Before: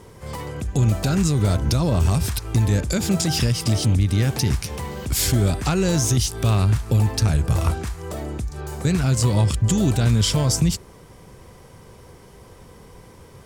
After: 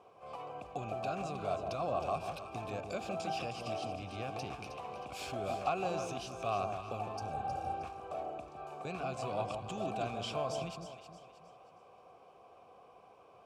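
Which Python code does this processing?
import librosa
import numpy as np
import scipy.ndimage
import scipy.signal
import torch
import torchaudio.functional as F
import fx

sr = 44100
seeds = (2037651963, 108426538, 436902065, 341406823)

y = fx.vowel_filter(x, sr, vowel='a')
y = fx.spec_repair(y, sr, seeds[0], start_s=7.19, length_s=0.53, low_hz=610.0, high_hz=4400.0, source='after')
y = fx.echo_alternate(y, sr, ms=157, hz=960.0, feedback_pct=61, wet_db=-5.0)
y = F.gain(torch.from_numpy(y), 1.0).numpy()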